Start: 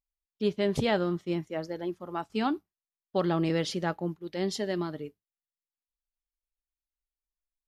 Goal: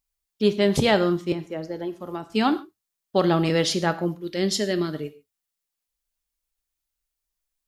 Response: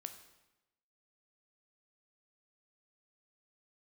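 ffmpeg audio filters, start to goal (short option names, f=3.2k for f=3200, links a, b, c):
-filter_complex "[0:a]asettb=1/sr,asplit=3[a][b][c];[a]atrim=end=1.324[d];[b]atrim=start=1.32:end=2.3,asetpts=PTS-STARTPTS,afade=t=in:d=0.004:c=qsin,afade=t=out:st=0.976:d=0.004:c=qsin,acrossover=split=540|2000[e][f][g];[e]acompressor=threshold=-36dB:ratio=4[h];[f]acompressor=threshold=-46dB:ratio=4[i];[g]acompressor=threshold=-59dB:ratio=4[j];[h][i][j]amix=inputs=3:normalize=0[k];[c]atrim=start=2.296[l];[d][k]acrossfade=d=0.004:c1=hsin:c2=qsin[m];[m][l]acrossfade=d=0.004:c1=qsin:c2=hsin,asettb=1/sr,asplit=3[n][o][p];[n]atrim=end=4.214[q];[o]atrim=start=4.21:end=4.95,asetpts=PTS-STARTPTS,afade=t=in:d=0.004:c=qsin,afade=t=out:st=0.736:d=0.004:c=qsin,equalizer=f=880:w=2.5:g=-11[r];[p]atrim=start=4.946[s];[q][r]acrossfade=d=0.004:c1=hsin:c2=qsin[t];[t][s]acrossfade=d=0.004:c1=qsin:c2=hsin,asplit=2[u][v];[1:a]atrim=start_sample=2205,atrim=end_sample=6615,highshelf=f=3.3k:g=9[w];[v][w]afir=irnorm=-1:irlink=0,volume=6dB[x];[u][x]amix=inputs=2:normalize=0"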